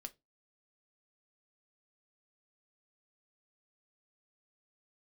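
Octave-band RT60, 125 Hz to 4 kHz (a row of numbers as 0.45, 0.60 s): 0.35, 0.30, 0.25, 0.15, 0.15, 0.15 s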